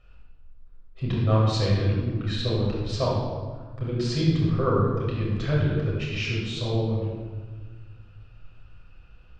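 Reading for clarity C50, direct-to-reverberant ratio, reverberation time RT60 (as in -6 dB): -0.5 dB, -5.5 dB, 1.5 s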